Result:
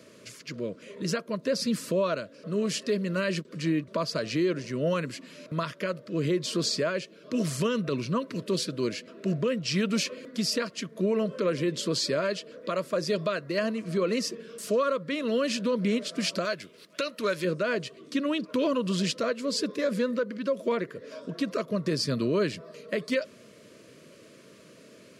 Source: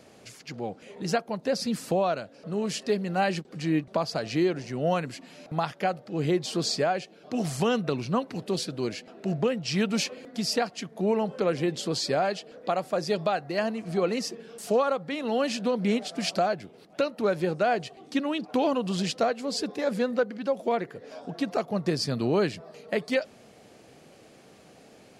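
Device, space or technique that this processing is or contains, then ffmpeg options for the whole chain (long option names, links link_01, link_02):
PA system with an anti-feedback notch: -filter_complex "[0:a]asettb=1/sr,asplit=3[link_01][link_02][link_03];[link_01]atrim=end=16.454[link_04];[link_02]atrim=start=16.45:end=17.45,asetpts=PTS-STARTPTS,afade=type=in:duration=0.004:curve=qsin,afade=type=out:start_time=0.996:duration=0.004:curve=qsin,tiltshelf=frequency=1100:gain=-6.5[link_05];[link_03]atrim=start=17.446[link_06];[link_04][link_05]acrossfade=duration=0.004:curve1=hsin:curve2=qsin[link_07];[link_07][link_06]acrossfade=duration=0.004:curve1=qsin:curve2=hsin,highpass=110,asuperstop=centerf=790:order=8:qfactor=2.7,alimiter=limit=-19.5dB:level=0:latency=1:release=48,volume=1.5dB"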